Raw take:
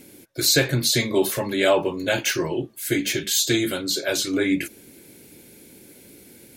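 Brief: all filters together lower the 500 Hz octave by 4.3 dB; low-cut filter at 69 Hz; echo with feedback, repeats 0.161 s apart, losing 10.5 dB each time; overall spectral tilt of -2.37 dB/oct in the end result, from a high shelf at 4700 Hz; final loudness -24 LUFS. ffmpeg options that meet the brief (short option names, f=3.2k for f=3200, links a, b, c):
-af "highpass=69,equalizer=f=500:t=o:g=-6,highshelf=f=4.7k:g=6,aecho=1:1:161|322|483:0.299|0.0896|0.0269,volume=-4dB"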